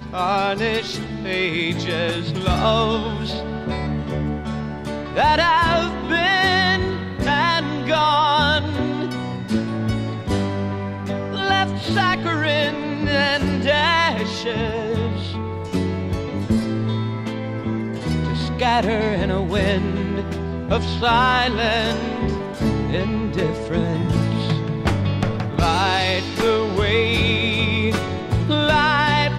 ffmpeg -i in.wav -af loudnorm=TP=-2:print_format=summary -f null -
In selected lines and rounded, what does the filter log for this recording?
Input Integrated:    -20.2 LUFS
Input True Peak:      -4.1 dBTP
Input LRA:             4.6 LU
Input Threshold:     -30.2 LUFS